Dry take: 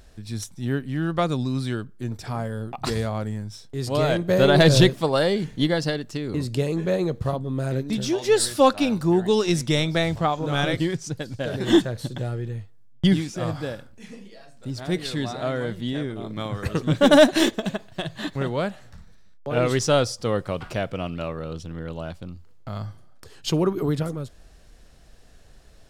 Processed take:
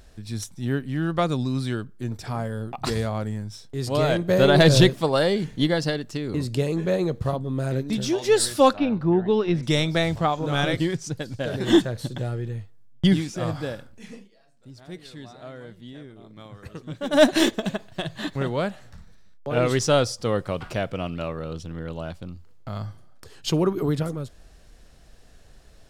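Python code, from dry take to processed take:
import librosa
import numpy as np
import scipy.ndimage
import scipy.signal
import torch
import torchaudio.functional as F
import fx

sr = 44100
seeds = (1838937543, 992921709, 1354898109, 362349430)

y = fx.air_absorb(x, sr, metres=370.0, at=(8.77, 9.63))
y = fx.edit(y, sr, fx.fade_down_up(start_s=14.16, length_s=3.08, db=-13.5, fade_s=0.12), tone=tone)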